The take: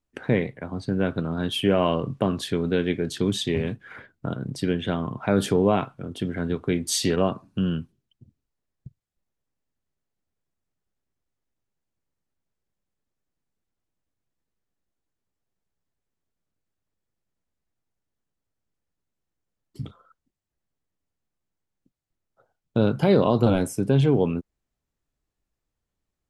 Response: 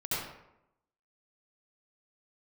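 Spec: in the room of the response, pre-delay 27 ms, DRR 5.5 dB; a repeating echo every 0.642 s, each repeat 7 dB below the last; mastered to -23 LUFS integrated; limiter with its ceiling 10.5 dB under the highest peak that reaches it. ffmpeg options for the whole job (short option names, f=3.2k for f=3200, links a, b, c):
-filter_complex "[0:a]alimiter=limit=-17.5dB:level=0:latency=1,aecho=1:1:642|1284|1926|2568|3210:0.447|0.201|0.0905|0.0407|0.0183,asplit=2[a][b];[1:a]atrim=start_sample=2205,adelay=27[c];[b][c]afir=irnorm=-1:irlink=0,volume=-12dB[d];[a][d]amix=inputs=2:normalize=0,volume=4.5dB"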